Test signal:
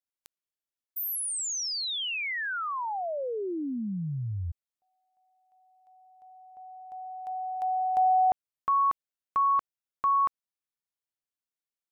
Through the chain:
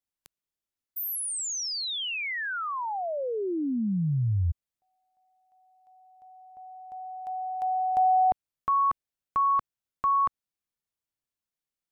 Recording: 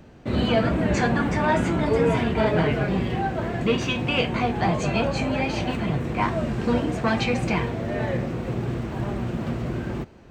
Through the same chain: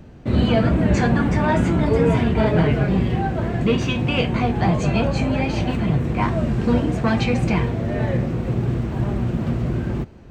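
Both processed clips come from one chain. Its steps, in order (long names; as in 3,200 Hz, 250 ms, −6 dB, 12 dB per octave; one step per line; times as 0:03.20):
low-shelf EQ 250 Hz +8.5 dB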